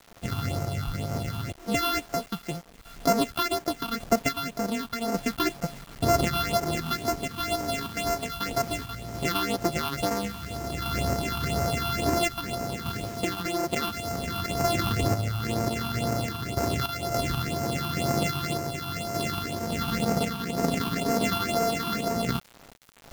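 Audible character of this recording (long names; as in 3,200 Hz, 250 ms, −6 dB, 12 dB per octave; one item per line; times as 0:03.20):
a buzz of ramps at a fixed pitch in blocks of 64 samples
phaser sweep stages 6, 2 Hz, lowest notch 520–3,300 Hz
a quantiser's noise floor 8 bits, dither none
sample-and-hold tremolo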